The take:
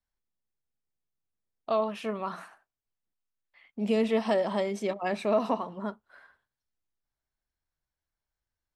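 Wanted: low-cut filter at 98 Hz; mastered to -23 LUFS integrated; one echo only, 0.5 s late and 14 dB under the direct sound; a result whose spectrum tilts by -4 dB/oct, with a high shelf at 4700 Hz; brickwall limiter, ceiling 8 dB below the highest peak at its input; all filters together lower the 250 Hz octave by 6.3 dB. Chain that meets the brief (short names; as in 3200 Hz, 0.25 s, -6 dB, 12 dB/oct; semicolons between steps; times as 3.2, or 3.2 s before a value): HPF 98 Hz; bell 250 Hz -7.5 dB; high shelf 4700 Hz +8 dB; limiter -22 dBFS; echo 0.5 s -14 dB; gain +10.5 dB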